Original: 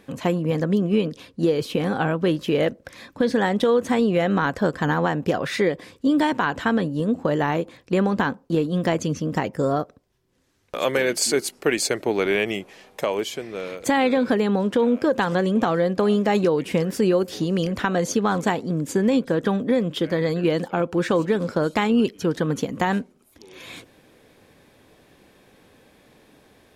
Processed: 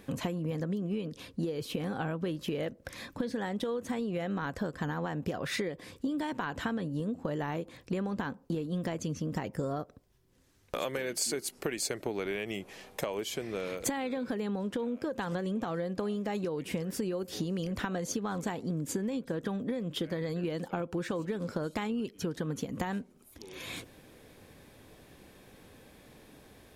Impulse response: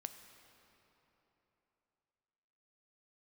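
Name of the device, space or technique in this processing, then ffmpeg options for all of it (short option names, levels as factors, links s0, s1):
ASMR close-microphone chain: -af "lowshelf=f=130:g=7.5,acompressor=threshold=0.0398:ratio=10,highshelf=f=8000:g=6.5,volume=0.75"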